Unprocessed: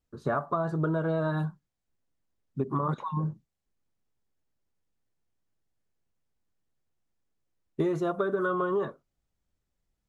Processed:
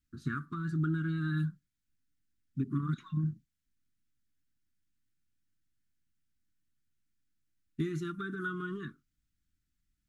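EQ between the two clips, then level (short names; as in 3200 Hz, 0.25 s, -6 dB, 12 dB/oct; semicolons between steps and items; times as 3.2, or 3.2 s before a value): elliptic band-stop 300–1400 Hz, stop band 60 dB; dynamic EQ 850 Hz, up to -5 dB, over -53 dBFS, Q 1; bell 440 Hz +3 dB 0.28 oct; 0.0 dB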